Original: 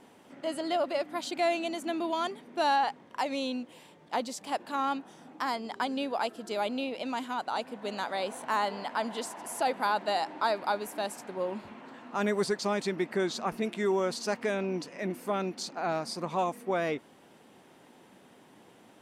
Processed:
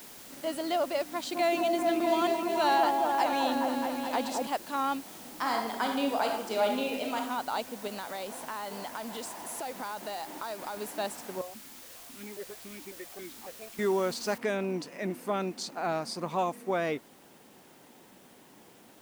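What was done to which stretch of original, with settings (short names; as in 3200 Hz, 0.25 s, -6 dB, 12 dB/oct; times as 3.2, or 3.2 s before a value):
1.13–4.47 repeats that get brighter 0.213 s, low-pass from 750 Hz, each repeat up 1 oct, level 0 dB
5.01–7.16 reverb throw, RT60 0.93 s, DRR 1 dB
7.87–10.77 compressor, threshold -34 dBFS
11.41–13.79 vowel sequencer 7.3 Hz
14.38 noise floor step -49 dB -62 dB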